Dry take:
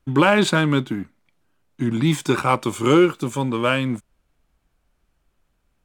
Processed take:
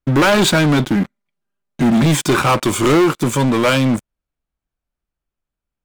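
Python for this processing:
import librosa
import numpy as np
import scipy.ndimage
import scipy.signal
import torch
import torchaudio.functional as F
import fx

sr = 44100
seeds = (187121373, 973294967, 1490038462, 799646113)

y = fx.comb(x, sr, ms=5.0, depth=0.9, at=(0.95, 2.06))
y = fx.leveller(y, sr, passes=5)
y = y * librosa.db_to_amplitude(-6.0)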